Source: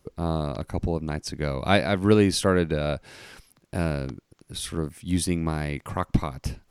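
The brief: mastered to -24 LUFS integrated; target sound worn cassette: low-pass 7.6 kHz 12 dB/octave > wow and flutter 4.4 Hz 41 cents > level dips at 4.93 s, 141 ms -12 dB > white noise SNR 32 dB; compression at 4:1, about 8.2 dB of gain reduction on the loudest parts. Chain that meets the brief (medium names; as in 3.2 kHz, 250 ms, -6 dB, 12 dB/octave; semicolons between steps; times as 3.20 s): compression 4:1, threshold -23 dBFS; low-pass 7.6 kHz 12 dB/octave; wow and flutter 4.4 Hz 41 cents; level dips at 4.93 s, 141 ms -12 dB; white noise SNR 32 dB; trim +6.5 dB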